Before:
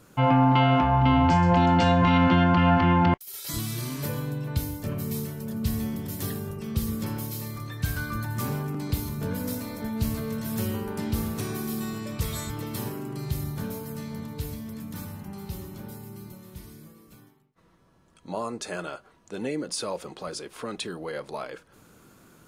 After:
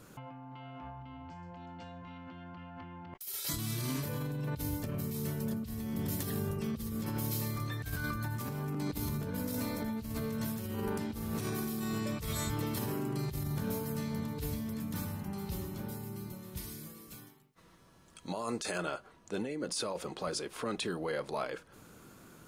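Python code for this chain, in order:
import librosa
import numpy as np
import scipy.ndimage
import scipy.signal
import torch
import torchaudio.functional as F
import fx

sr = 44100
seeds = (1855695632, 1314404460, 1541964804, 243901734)

y = fx.high_shelf(x, sr, hz=2200.0, db=8.5, at=(16.57, 18.78))
y = fx.over_compress(y, sr, threshold_db=-33.0, ratio=-1.0)
y = F.gain(torch.from_numpy(y), -5.5).numpy()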